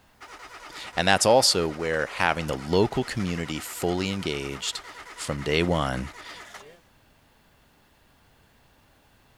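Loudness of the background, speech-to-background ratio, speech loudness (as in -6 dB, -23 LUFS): -42.5 LUFS, 17.5 dB, -25.0 LUFS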